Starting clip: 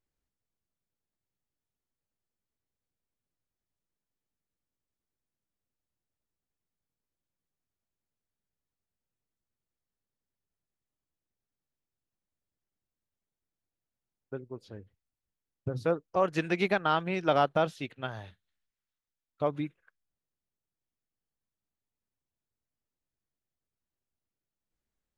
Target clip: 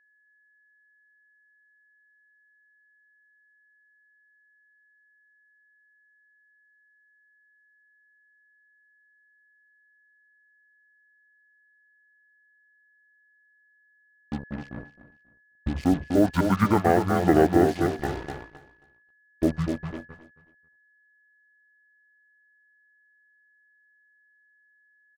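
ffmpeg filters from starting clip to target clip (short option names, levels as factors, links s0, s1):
-filter_complex "[0:a]lowshelf=f=67:g=-11.5,asetrate=24046,aresample=44100,atempo=1.83401,equalizer=f=4500:t=o:w=0.21:g=10.5,asplit=2[s0][s1];[s1]adelay=249,lowpass=f=1600:p=1,volume=0.501,asplit=2[s2][s3];[s3]adelay=249,lowpass=f=1600:p=1,volume=0.35,asplit=2[s4][s5];[s5]adelay=249,lowpass=f=1600:p=1,volume=0.35,asplit=2[s6][s7];[s7]adelay=249,lowpass=f=1600:p=1,volume=0.35[s8];[s2][s4][s6][s8]amix=inputs=4:normalize=0[s9];[s0][s9]amix=inputs=2:normalize=0,acrusher=bits=6:mix=0:aa=0.5,aeval=exprs='val(0)+0.00178*sin(2*PI*1700*n/s)':c=same,agate=range=0.2:threshold=0.00355:ratio=16:detection=peak,asplit=2[s10][s11];[s11]aecho=0:1:270|540:0.141|0.0353[s12];[s10][s12]amix=inputs=2:normalize=0,volume=2.11"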